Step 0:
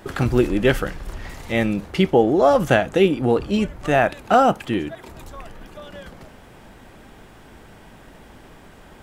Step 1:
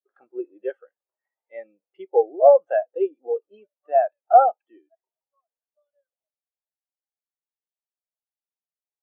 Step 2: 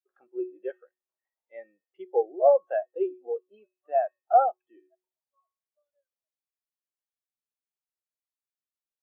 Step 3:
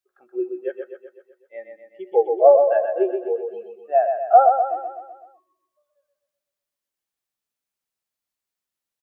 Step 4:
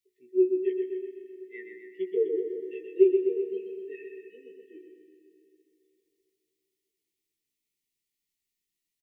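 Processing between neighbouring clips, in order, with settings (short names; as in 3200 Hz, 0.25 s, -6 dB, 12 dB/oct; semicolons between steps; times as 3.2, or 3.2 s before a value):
Chebyshev band-pass 560–9500 Hz, order 2; spectral expander 2.5:1
resonator 370 Hz, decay 0.35 s, harmonics odd, mix 70%; gain +4 dB
feedback echo 0.126 s, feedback 55%, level -6 dB; gain +6.5 dB
brick-wall FIR band-stop 460–1800 Hz; doubler 16 ms -4.5 dB; on a send at -10.5 dB: reverb RT60 3.3 s, pre-delay 0.12 s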